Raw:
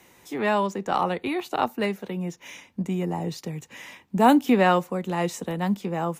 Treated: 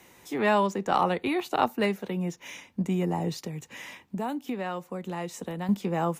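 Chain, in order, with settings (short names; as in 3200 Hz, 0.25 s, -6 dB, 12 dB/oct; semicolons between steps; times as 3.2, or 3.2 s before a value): 3.39–5.69 compressor 4:1, threshold -32 dBFS, peak gain reduction 16.5 dB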